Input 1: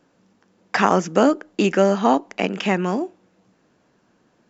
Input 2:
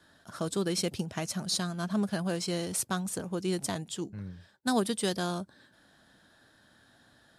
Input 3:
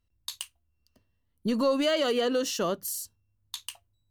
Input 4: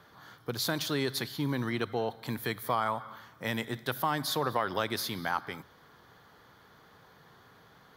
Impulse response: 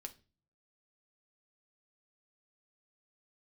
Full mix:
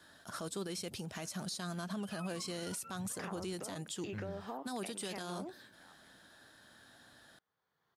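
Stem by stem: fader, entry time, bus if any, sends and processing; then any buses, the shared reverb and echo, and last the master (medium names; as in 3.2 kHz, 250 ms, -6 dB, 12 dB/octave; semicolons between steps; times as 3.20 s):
-17.0 dB, 2.45 s, no bus, no send, low-pass that closes with the level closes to 1.3 kHz, closed at -11.5 dBFS; tone controls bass -8 dB, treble +6 dB; compression, threshold -22 dBFS, peak gain reduction 10.5 dB
+2.0 dB, 0.00 s, bus A, no send, treble shelf 8.6 kHz +4 dB
-18.5 dB, 0.50 s, bus A, no send, spectrum inverted on a logarithmic axis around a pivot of 830 Hz
-19.0 dB, 0.55 s, bus A, no send, auto duck -13 dB, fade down 2.00 s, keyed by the second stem
bus A: 0.0 dB, bass shelf 340 Hz -5.5 dB; compression 4:1, threshold -33 dBFS, peak gain reduction 9 dB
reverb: none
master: peak limiter -32 dBFS, peak gain reduction 11 dB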